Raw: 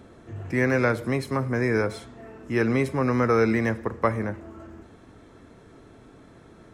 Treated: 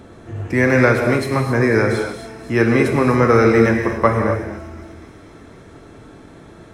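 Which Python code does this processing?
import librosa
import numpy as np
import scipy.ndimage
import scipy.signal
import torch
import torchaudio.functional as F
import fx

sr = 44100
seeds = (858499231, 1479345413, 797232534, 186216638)

y = fx.echo_wet_highpass(x, sr, ms=247, feedback_pct=73, hz=3700.0, wet_db=-13)
y = fx.rev_gated(y, sr, seeds[0], gate_ms=300, shape='flat', drr_db=2.5)
y = y * 10.0 ** (7.0 / 20.0)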